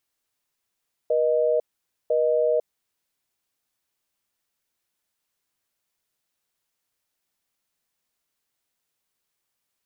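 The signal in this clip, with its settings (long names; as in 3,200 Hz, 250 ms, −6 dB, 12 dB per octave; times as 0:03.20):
call progress tone busy tone, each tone −21 dBFS 1.56 s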